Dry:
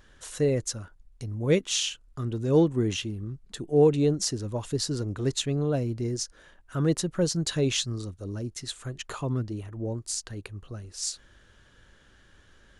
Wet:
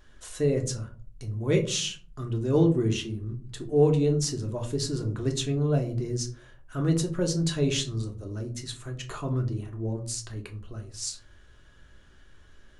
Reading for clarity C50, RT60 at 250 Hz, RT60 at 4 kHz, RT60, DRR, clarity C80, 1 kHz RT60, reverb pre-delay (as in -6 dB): 12.5 dB, 0.70 s, 0.20 s, 0.45 s, 2.5 dB, 16.5 dB, 0.40 s, 3 ms